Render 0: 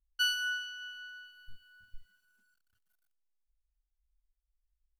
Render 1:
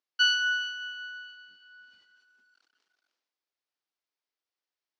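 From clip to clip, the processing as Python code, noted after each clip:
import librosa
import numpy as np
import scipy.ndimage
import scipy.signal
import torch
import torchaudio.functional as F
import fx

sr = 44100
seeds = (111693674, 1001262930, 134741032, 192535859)

y = scipy.signal.sosfilt(scipy.signal.cheby1(3, 1.0, [290.0, 5300.0], 'bandpass', fs=sr, output='sos'), x)
y = fx.sustainer(y, sr, db_per_s=54.0)
y = y * 10.0 ** (7.0 / 20.0)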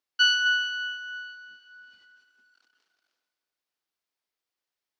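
y = fx.echo_feedback(x, sr, ms=257, feedback_pct=40, wet_db=-15.5)
y = y * 10.0 ** (2.5 / 20.0)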